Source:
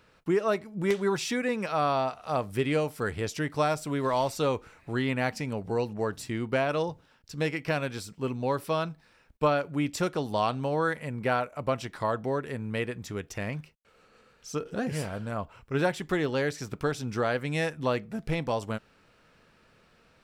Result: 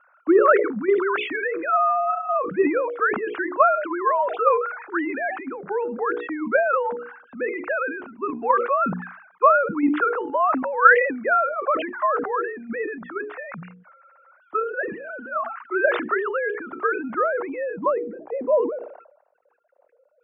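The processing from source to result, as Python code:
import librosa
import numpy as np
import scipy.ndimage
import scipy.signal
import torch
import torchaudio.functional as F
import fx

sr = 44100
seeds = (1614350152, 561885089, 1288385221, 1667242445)

p1 = fx.sine_speech(x, sr)
p2 = fx.peak_eq(p1, sr, hz=420.0, db=-3.5, octaves=0.25)
p3 = fx.hum_notches(p2, sr, base_hz=60, count=8)
p4 = fx.level_steps(p3, sr, step_db=12)
p5 = p3 + F.gain(torch.from_numpy(p4), -0.5).numpy()
p6 = fx.transient(p5, sr, attack_db=3, sustain_db=8)
p7 = fx.filter_sweep_lowpass(p6, sr, from_hz=1400.0, to_hz=490.0, start_s=16.98, end_s=19.3, q=3.5)
p8 = fx.sustainer(p7, sr, db_per_s=74.0)
y = F.gain(torch.from_numpy(p8), -1.5).numpy()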